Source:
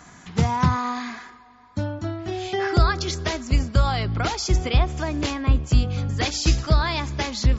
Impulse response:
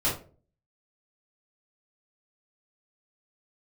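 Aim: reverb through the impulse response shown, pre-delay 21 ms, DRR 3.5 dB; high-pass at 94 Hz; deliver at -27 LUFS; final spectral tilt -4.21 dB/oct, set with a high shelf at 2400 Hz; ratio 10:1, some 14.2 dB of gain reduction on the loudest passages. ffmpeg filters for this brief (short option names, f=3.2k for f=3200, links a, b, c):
-filter_complex "[0:a]highpass=94,highshelf=f=2.4k:g=7,acompressor=threshold=-30dB:ratio=10,asplit=2[a][b];[1:a]atrim=start_sample=2205,adelay=21[c];[b][c]afir=irnorm=-1:irlink=0,volume=-14dB[d];[a][d]amix=inputs=2:normalize=0,volume=5dB"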